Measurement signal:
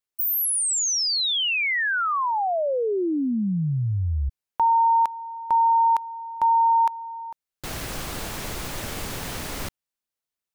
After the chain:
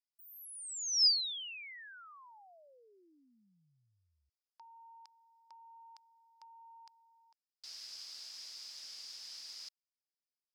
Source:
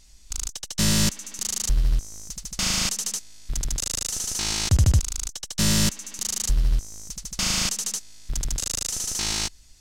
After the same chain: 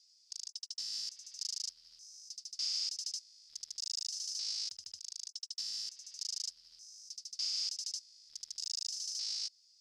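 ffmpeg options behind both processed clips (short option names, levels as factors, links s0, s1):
-af "acompressor=threshold=0.0708:ratio=6:attack=45:release=111:knee=1:detection=peak,alimiter=limit=0.15:level=0:latency=1:release=253,bandpass=f=5000:t=q:w=8.8:csg=0"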